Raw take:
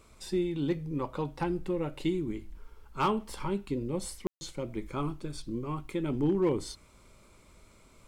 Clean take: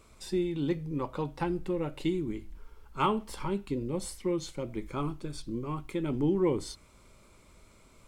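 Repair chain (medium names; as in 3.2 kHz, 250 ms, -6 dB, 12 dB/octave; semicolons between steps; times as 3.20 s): clip repair -20.5 dBFS; room tone fill 4.27–4.41 s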